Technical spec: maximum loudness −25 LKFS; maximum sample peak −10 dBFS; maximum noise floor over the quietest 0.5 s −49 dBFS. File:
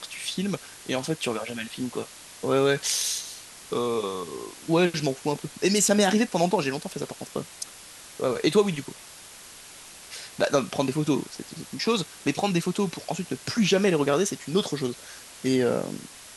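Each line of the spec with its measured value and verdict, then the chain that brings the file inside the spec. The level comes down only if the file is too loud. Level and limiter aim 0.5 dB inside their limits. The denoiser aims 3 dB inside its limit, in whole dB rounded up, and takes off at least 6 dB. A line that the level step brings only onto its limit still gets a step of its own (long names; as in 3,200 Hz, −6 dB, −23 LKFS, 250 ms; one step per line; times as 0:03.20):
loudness −26.0 LKFS: in spec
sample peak −7.0 dBFS: out of spec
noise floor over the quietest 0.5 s −46 dBFS: out of spec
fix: broadband denoise 6 dB, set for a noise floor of −46 dBFS
brickwall limiter −10.5 dBFS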